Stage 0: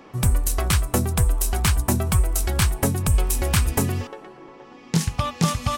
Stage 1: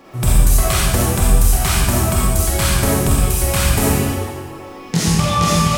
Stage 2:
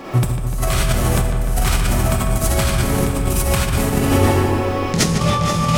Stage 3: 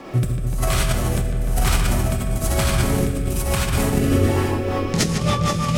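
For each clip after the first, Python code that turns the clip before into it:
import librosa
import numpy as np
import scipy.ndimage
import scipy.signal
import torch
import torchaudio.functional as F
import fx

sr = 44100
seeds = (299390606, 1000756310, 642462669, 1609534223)

y1 = fx.rider(x, sr, range_db=10, speed_s=0.5)
y1 = fx.dmg_crackle(y1, sr, seeds[0], per_s=340.0, level_db=-45.0)
y1 = fx.rev_freeverb(y1, sr, rt60_s=1.3, hf_ratio=1.0, predelay_ms=5, drr_db=-7.0)
y2 = fx.high_shelf(y1, sr, hz=5200.0, db=-4.5)
y2 = fx.over_compress(y2, sr, threshold_db=-23.0, ratio=-1.0)
y2 = fx.echo_filtered(y2, sr, ms=149, feedback_pct=80, hz=3600.0, wet_db=-8.0)
y2 = F.gain(torch.from_numpy(y2), 4.0).numpy()
y3 = fx.rotary_switch(y2, sr, hz=1.0, then_hz=6.0, switch_at_s=4.13)
y3 = F.gain(torch.from_numpy(y3), -1.0).numpy()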